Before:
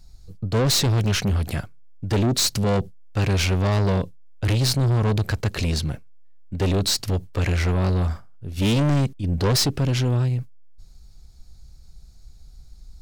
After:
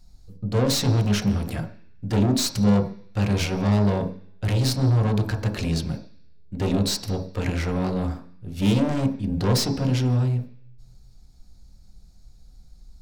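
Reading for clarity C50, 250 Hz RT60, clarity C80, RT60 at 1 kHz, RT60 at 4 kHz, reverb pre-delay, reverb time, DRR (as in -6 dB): 11.5 dB, 0.50 s, 14.5 dB, 0.50 s, 0.85 s, 3 ms, 0.50 s, 3.0 dB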